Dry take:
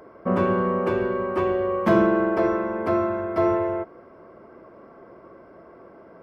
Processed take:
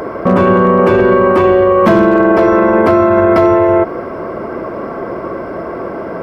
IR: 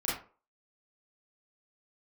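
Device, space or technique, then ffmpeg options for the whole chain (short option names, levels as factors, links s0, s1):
loud club master: -af "acompressor=threshold=0.0708:ratio=2.5,asoftclip=type=hard:threshold=0.141,alimiter=level_in=20:limit=0.891:release=50:level=0:latency=1,volume=0.891"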